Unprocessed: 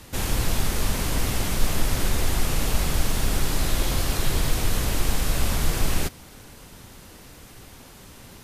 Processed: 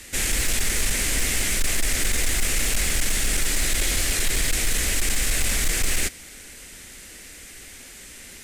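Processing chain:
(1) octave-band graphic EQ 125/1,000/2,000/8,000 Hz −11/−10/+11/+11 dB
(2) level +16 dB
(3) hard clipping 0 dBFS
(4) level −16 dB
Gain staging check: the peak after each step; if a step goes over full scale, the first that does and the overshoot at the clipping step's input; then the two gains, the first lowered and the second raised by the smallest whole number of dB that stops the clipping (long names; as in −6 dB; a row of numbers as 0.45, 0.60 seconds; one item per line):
−6.0, +10.0, 0.0, −16.0 dBFS
step 2, 10.0 dB
step 2 +6 dB, step 4 −6 dB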